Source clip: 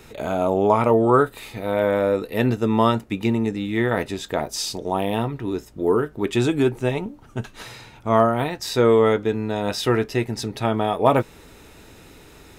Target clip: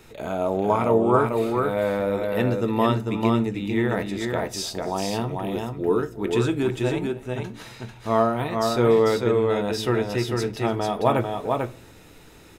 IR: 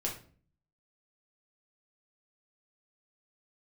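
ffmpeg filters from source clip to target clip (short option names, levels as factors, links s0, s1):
-filter_complex "[0:a]aecho=1:1:290|445:0.1|0.631,asplit=2[s0][s1];[1:a]atrim=start_sample=2205[s2];[s1][s2]afir=irnorm=-1:irlink=0,volume=0.224[s3];[s0][s3]amix=inputs=2:normalize=0,volume=0.531"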